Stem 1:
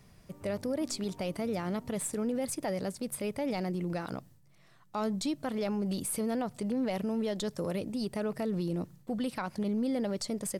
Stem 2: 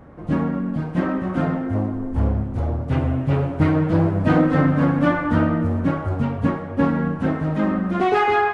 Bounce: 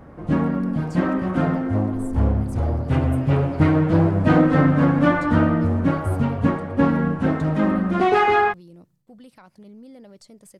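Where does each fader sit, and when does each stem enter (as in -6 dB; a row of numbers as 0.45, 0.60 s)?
-13.0, +1.0 dB; 0.00, 0.00 s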